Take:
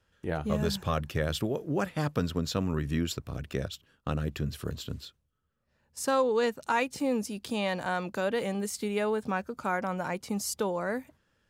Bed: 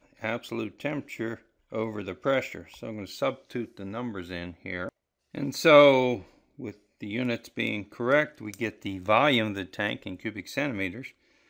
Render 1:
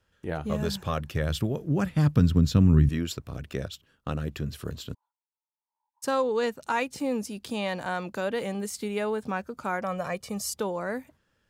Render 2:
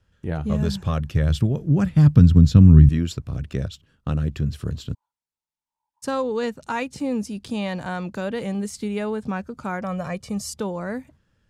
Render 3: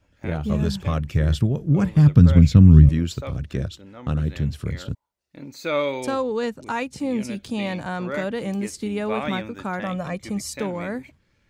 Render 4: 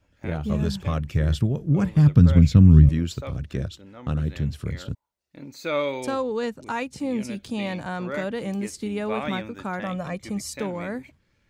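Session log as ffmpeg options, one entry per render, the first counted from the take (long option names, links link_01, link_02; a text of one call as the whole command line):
ffmpeg -i in.wav -filter_complex "[0:a]asettb=1/sr,asplit=3[link_01][link_02][link_03];[link_01]atrim=end=1.024[link_04];[link_02]atrim=start=1.02:end=2.89,asetpts=PTS-STARTPTS,afade=type=in:duration=0.004:curve=qsin,afade=type=out:start_time=1.866:duration=0.004:curve=qsin,asubboost=boost=11.5:cutoff=240[link_05];[link_03]atrim=start=2.886[link_06];[link_04][link_05]acrossfade=duration=0.004:curve1=hsin:curve2=qsin[link_07];[link_07][link_06]acrossfade=duration=0.004:curve1=qsin:curve2=hsin,asplit=3[link_08][link_09][link_10];[link_08]afade=type=out:start_time=4.93:duration=0.02[link_11];[link_09]asuperpass=centerf=910:order=4:qfactor=6.4,afade=type=in:start_time=4.93:duration=0.02,afade=type=out:start_time=6.02:duration=0.02[link_12];[link_10]afade=type=in:start_time=6.02:duration=0.02[link_13];[link_11][link_12][link_13]amix=inputs=3:normalize=0,asettb=1/sr,asplit=3[link_14][link_15][link_16];[link_14]atrim=end=9.834[link_17];[link_15]atrim=start=9.83:end=10.5,asetpts=PTS-STARTPTS,afade=type=in:duration=0.004:curve=qsin,afade=type=out:start_time=0.666:duration=0.004:curve=qsin,aecho=1:1:1.7:0.64,atrim=end_sample=29547[link_18];[link_16]atrim=start=10.496[link_19];[link_17][link_18]acrossfade=duration=0.004:curve1=hsin:curve2=qsin[link_20];[link_20][link_19]acrossfade=duration=0.004:curve1=qsin:curve2=hsin" out.wav
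ffmpeg -i in.wav -af "lowpass=10000,bass=frequency=250:gain=10,treble=frequency=4000:gain=1" out.wav
ffmpeg -i in.wav -i bed.wav -filter_complex "[1:a]volume=-7.5dB[link_01];[0:a][link_01]amix=inputs=2:normalize=0" out.wav
ffmpeg -i in.wav -af "volume=-2dB" out.wav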